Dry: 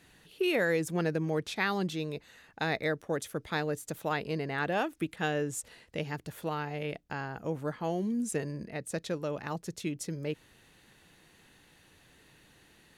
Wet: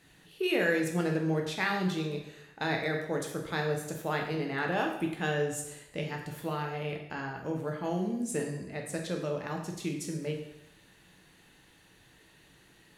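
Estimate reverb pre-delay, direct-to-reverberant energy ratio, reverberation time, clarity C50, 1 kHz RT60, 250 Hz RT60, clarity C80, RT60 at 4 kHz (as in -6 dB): 5 ms, 1.0 dB, 0.85 s, 5.5 dB, 0.85 s, 0.85 s, 8.0 dB, 0.75 s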